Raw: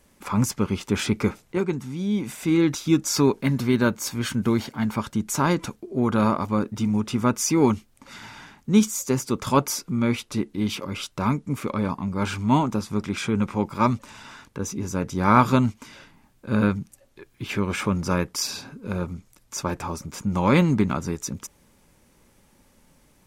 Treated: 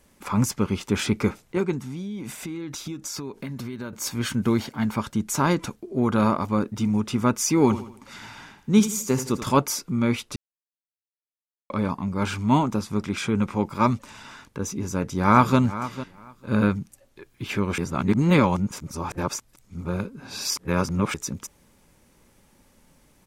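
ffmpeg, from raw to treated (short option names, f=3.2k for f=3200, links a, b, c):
-filter_complex "[0:a]asettb=1/sr,asplit=3[a][b][c];[a]atrim=end=1.814[d];[b]atrim=start=1.81:end=3.93,asetpts=PTS-STARTPTS,afade=t=in:d=0.004:c=qsin,afade=t=out:st=2.116:d=0.004:c=qsin,acompressor=threshold=-29dB:ratio=16:attack=3.2:release=140:knee=1:detection=peak[e];[c]atrim=start=3.926[f];[d][e]acrossfade=d=0.004:c1=hsin:c2=qsin[g];[g][f]acrossfade=d=0.004:c1=qsin:c2=hsin,asettb=1/sr,asplit=3[h][i][j];[h]atrim=end=7.634[k];[i]atrim=start=7.63:end=9.52,asetpts=PTS-STARTPTS,afade=t=in:d=0.004:c=qsin,afade=t=out:st=1.886:d=0.004:c=qsin,aecho=1:1:81|162|243|324:0.251|0.103|0.0422|0.0173,atrim=end_sample=83349[l];[j]atrim=start=9.516[m];[k][l]acrossfade=d=0.004:c1=hsin:c2=qsin[n];[n][m]acrossfade=d=0.004:c1=qsin:c2=hsin,asplit=2[o][p];[p]afade=t=in:st=14.77:d=0.01,afade=t=out:st=15.58:d=0.01,aecho=0:1:450|900:0.199526|0.0299289[q];[o][q]amix=inputs=2:normalize=0,asplit=5[r][s][t][u][v];[r]atrim=end=10.36,asetpts=PTS-STARTPTS,afade=t=out:st=10.356:d=0.004:c=hsin[w];[s]atrim=start=10.36:end=11.7,asetpts=PTS-STARTPTS,volume=0[x];[t]atrim=start=11.7:end=17.782,asetpts=PTS-STARTPTS,afade=t=in:d=0.004:c=hsin[y];[u]atrim=start=17.778:end=21.142,asetpts=PTS-STARTPTS,areverse[z];[v]atrim=start=21.138[aa];[w][x][y]concat=n=3:v=0:a=1[ab];[ab][z]acrossfade=d=0.004:c1=hsin:c2=hsin[ac];[ac][aa]acrossfade=d=0.004:c1=hsin:c2=hsin"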